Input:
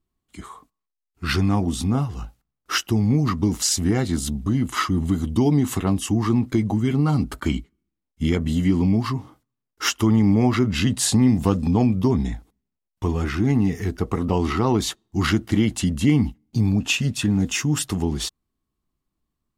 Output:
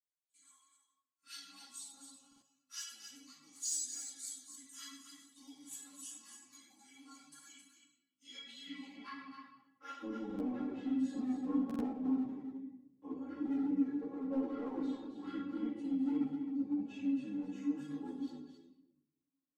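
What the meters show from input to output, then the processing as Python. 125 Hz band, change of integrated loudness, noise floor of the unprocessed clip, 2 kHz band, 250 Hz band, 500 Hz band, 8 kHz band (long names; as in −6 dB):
−38.0 dB, −17.5 dB, −82 dBFS, −26.5 dB, −16.5 dB, −21.5 dB, −15.5 dB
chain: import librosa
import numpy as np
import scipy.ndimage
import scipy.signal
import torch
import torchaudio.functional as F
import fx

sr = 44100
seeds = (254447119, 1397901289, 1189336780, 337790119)

p1 = scipy.signal.sosfilt(scipy.signal.butter(2, 140.0, 'highpass', fs=sr, output='sos'), x)
p2 = fx.stiff_resonator(p1, sr, f0_hz=270.0, decay_s=0.24, stiffness=0.002)
p3 = fx.filter_sweep_bandpass(p2, sr, from_hz=7700.0, to_hz=440.0, start_s=8.04, end_s=10.03, q=1.9)
p4 = fx.room_shoebox(p3, sr, seeds[0], volume_m3=270.0, walls='mixed', distance_m=2.1)
p5 = np.clip(p4, -10.0 ** (-34.5 / 20.0), 10.0 ** (-34.5 / 20.0))
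p6 = p4 + (p5 * librosa.db_to_amplitude(-4.5))
p7 = p6 + 0.48 * np.pad(p6, (int(6.7 * sr / 1000.0), 0))[:len(p6)]
p8 = p7 + fx.echo_single(p7, sr, ms=264, db=-8.0, dry=0)
p9 = fx.buffer_glitch(p8, sr, at_s=(2.27, 10.25, 11.65), block=2048, repeats=2)
p10 = fx.ensemble(p9, sr)
y = p10 * librosa.db_to_amplitude(-3.5)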